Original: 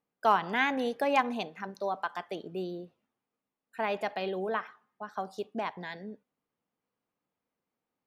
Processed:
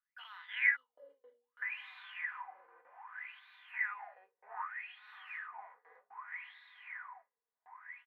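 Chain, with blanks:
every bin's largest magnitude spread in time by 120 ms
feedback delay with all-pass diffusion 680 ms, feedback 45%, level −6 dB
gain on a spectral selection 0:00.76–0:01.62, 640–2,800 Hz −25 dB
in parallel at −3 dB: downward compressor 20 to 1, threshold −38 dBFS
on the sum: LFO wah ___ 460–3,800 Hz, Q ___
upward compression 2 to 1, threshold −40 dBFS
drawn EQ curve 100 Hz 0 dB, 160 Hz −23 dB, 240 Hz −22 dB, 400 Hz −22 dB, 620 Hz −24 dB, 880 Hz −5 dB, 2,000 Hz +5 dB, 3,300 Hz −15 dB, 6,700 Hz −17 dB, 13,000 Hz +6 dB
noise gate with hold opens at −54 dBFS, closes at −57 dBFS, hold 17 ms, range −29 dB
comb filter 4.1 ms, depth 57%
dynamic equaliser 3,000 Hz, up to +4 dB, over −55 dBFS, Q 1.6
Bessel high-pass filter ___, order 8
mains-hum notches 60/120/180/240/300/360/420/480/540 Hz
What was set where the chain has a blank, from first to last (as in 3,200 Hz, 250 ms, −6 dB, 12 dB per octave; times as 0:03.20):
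0.64 Hz, 15, 340 Hz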